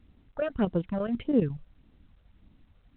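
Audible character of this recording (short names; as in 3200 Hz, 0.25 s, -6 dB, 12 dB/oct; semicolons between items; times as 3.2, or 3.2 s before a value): chopped level 12 Hz, depth 60%, duty 80%; phasing stages 8, 1.7 Hz, lowest notch 260–2400 Hz; A-law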